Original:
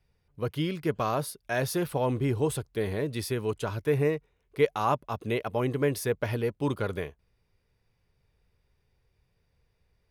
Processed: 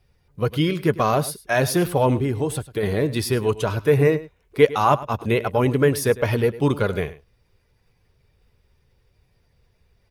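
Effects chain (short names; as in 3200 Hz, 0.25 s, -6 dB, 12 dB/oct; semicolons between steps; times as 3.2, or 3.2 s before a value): bin magnitudes rounded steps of 15 dB; 2.17–2.83 compressor 2:1, threshold -33 dBFS, peak gain reduction 6.5 dB; on a send: echo 0.103 s -17 dB; on the sum: gain +9 dB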